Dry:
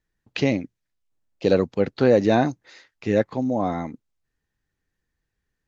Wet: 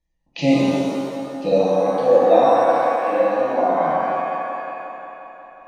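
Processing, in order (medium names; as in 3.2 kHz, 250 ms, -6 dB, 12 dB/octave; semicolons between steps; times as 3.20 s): spectral gate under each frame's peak -30 dB strong; 1.51–3.85 s: three-band isolator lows -16 dB, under 360 Hz, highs -22 dB, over 4.1 kHz; harmonic-percussive split harmonic +7 dB; peaking EQ 230 Hz -12.5 dB 0.43 oct; static phaser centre 400 Hz, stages 6; feedback echo behind a band-pass 179 ms, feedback 73%, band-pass 560 Hz, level -5.5 dB; pitch-shifted reverb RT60 1.8 s, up +7 st, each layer -8 dB, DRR -6.5 dB; trim -2 dB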